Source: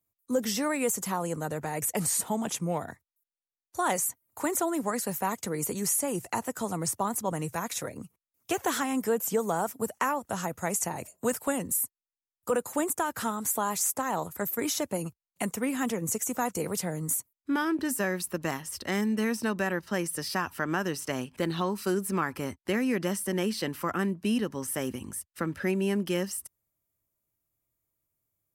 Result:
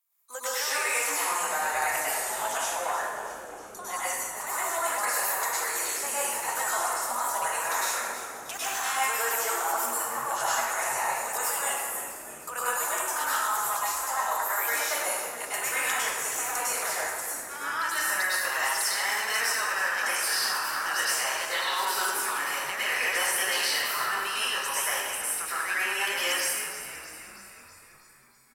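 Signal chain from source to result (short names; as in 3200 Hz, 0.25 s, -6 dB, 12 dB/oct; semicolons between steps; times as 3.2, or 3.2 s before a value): HPF 860 Hz 24 dB/oct; negative-ratio compressor -37 dBFS, ratio -1; on a send: frequency-shifting echo 0.32 s, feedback 60%, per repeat -110 Hz, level -12 dB; on the sum: plate-style reverb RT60 1.5 s, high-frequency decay 0.6×, pre-delay 90 ms, DRR -9.5 dB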